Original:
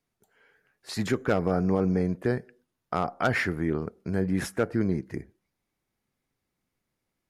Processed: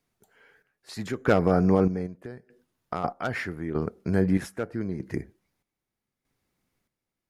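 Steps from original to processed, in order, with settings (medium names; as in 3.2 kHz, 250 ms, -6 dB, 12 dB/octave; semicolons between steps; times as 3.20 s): 2.06–3.04 s: compression 2.5:1, threshold -35 dBFS, peak gain reduction 10 dB; square tremolo 0.8 Hz, depth 65%, duty 50%; trim +4 dB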